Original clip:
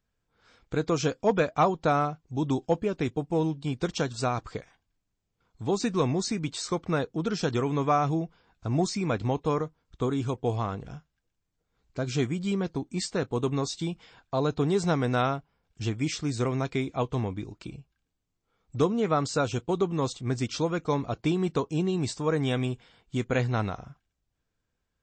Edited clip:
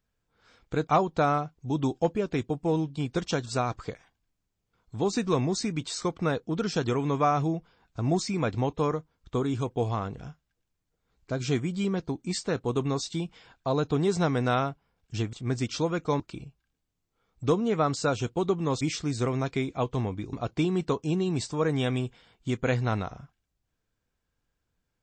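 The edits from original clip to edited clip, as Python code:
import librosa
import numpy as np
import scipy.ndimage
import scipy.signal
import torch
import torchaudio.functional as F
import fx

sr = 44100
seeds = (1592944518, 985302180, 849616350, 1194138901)

y = fx.edit(x, sr, fx.cut(start_s=0.87, length_s=0.67),
    fx.swap(start_s=16.0, length_s=1.52, other_s=20.13, other_length_s=0.87), tone=tone)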